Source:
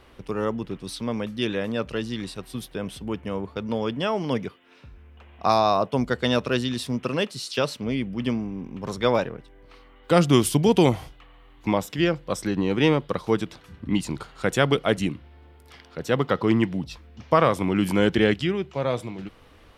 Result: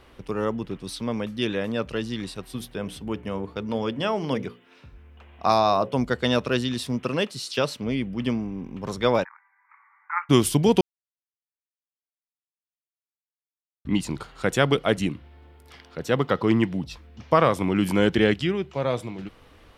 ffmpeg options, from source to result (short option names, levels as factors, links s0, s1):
-filter_complex "[0:a]asettb=1/sr,asplit=3[s0][s1][s2];[s0]atrim=end=2.574[s3];[s1]atrim=start=2.57:end=5.97,asetpts=PTS-STARTPTS,afade=t=in:d=0.004:c=qsin,afade=t=out:st=3.396:d=0.004:c=qsin,bandreject=f=60:t=h:w=6,bandreject=f=120:t=h:w=6,bandreject=f=180:t=h:w=6,bandreject=f=240:t=h:w=6,bandreject=f=300:t=h:w=6,bandreject=f=360:t=h:w=6,bandreject=f=420:t=h:w=6,bandreject=f=480:t=h:w=6,bandreject=f=540:t=h:w=6[s4];[s2]atrim=start=5.966[s5];[s3][s4]acrossfade=d=0.004:c1=hsin:c2=qsin[s6];[s6][s5]acrossfade=d=0.004:c1=qsin:c2=hsin,asplit=3[s7][s8][s9];[s7]afade=t=out:st=9.23:d=0.02[s10];[s8]asuperpass=centerf=1400:order=20:qfactor=0.97,afade=t=in:st=9.23:d=0.02,afade=t=out:st=10.29:d=0.02[s11];[s9]afade=t=in:st=10.29:d=0.02[s12];[s10][s11][s12]amix=inputs=3:normalize=0,asplit=3[s13][s14][s15];[s13]atrim=end=10.81,asetpts=PTS-STARTPTS,afade=t=out:st=10.806:d=0.004:c=hsin[s16];[s14]atrim=start=10.81:end=13.85,asetpts=PTS-STARTPTS,volume=0[s17];[s15]atrim=start=13.85,asetpts=PTS-STARTPTS,afade=t=in:d=0.004:c=hsin[s18];[s16][s17][s18]concat=n=3:v=0:a=1"